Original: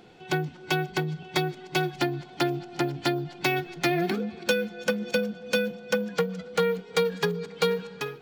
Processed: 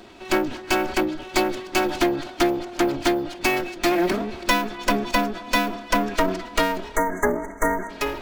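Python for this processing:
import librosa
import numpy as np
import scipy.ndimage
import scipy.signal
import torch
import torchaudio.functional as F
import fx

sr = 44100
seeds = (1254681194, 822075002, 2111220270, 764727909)

p1 = fx.lower_of_two(x, sr, delay_ms=3.1)
p2 = fx.rider(p1, sr, range_db=3, speed_s=0.5)
p3 = p1 + (p2 * 10.0 ** (1.5 / 20.0))
p4 = fx.dynamic_eq(p3, sr, hz=3700.0, q=1.8, threshold_db=-36.0, ratio=4.0, max_db=-4)
p5 = fx.spec_erase(p4, sr, start_s=6.96, length_s=0.94, low_hz=2200.0, high_hz=5900.0)
y = fx.sustainer(p5, sr, db_per_s=80.0)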